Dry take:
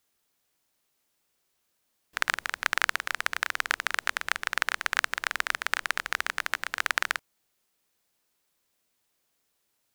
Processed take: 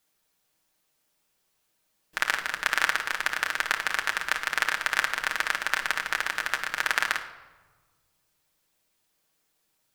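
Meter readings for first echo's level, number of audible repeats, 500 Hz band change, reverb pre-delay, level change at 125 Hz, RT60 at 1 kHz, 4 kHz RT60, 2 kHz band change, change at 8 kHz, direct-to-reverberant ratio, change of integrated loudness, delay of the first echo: no echo audible, no echo audible, +2.5 dB, 5 ms, can't be measured, 1.3 s, 0.75 s, +2.0 dB, +1.5 dB, 2.0 dB, +2.0 dB, no echo audible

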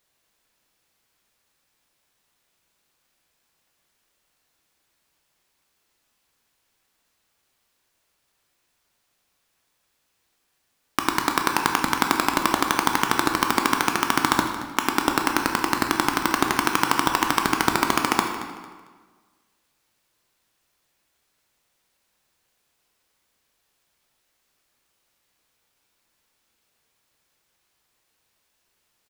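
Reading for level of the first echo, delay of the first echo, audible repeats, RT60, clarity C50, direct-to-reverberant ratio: −15.0 dB, 225 ms, 2, 1.5 s, 5.0 dB, 2.5 dB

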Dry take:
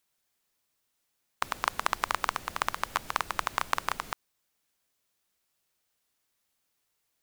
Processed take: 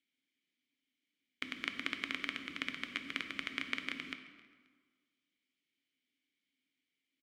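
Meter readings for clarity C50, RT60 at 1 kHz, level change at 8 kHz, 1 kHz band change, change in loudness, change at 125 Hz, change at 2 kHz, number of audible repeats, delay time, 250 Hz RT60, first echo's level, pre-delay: 9.0 dB, 1.6 s, −17.0 dB, −20.5 dB, −7.5 dB, −11.0 dB, −4.5 dB, 2, 266 ms, 1.6 s, −22.5 dB, 5 ms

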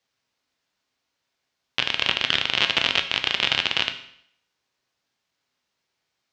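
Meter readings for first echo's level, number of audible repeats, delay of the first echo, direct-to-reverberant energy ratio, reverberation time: no echo audible, no echo audible, no echo audible, 6.0 dB, 0.65 s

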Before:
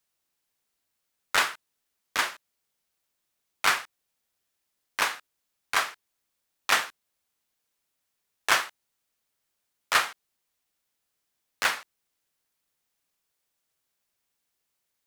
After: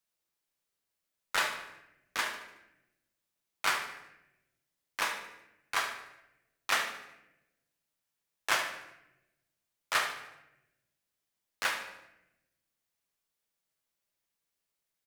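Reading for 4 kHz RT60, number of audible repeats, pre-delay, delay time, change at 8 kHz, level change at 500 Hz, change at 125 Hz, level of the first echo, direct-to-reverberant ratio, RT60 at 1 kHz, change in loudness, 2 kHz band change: 0.70 s, 3, 6 ms, 74 ms, −6.0 dB, −4.0 dB, can't be measured, −11.0 dB, 3.5 dB, 0.80 s, −6.5 dB, −5.5 dB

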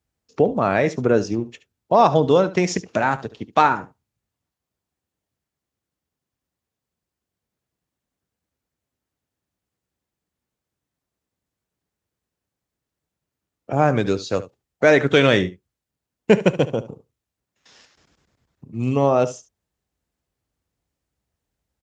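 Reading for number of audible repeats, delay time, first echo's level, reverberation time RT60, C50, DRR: 1, 72 ms, −16.0 dB, no reverb audible, no reverb audible, no reverb audible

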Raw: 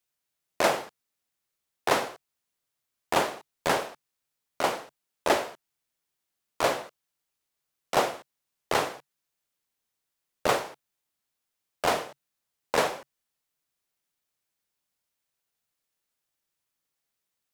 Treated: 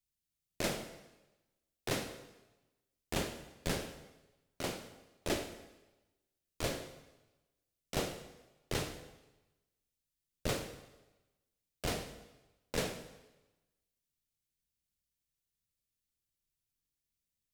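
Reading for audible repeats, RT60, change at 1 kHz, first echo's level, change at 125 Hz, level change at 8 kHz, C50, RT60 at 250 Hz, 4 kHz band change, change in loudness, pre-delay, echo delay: no echo audible, 1.1 s, −17.5 dB, no echo audible, +2.0 dB, −6.0 dB, 10.5 dB, 1.0 s, −7.5 dB, −11.0 dB, 6 ms, no echo audible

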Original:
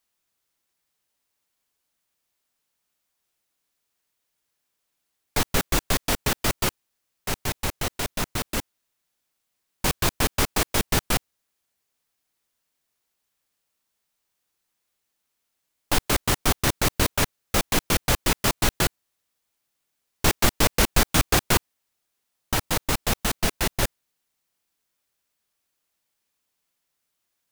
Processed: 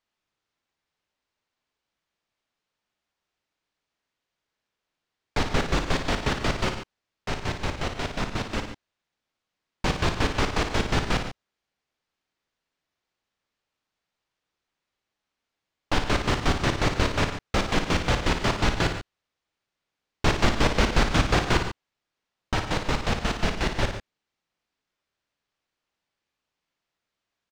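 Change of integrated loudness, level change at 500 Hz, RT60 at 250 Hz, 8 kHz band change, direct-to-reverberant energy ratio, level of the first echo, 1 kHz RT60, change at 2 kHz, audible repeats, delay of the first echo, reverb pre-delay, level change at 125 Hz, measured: −2.0 dB, +0.5 dB, no reverb audible, −11.5 dB, no reverb audible, −7.5 dB, no reverb audible, −0.5 dB, 2, 56 ms, no reverb audible, +1.0 dB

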